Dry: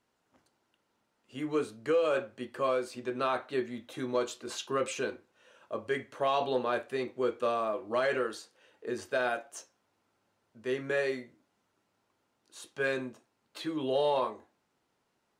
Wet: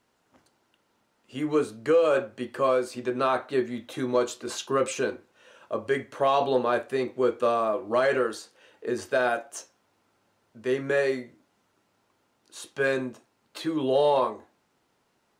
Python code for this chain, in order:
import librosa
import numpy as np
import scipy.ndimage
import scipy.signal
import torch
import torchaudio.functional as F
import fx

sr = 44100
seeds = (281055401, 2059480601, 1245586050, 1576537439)

y = fx.dynamic_eq(x, sr, hz=2900.0, q=0.88, threshold_db=-48.0, ratio=4.0, max_db=-4)
y = F.gain(torch.from_numpy(y), 6.5).numpy()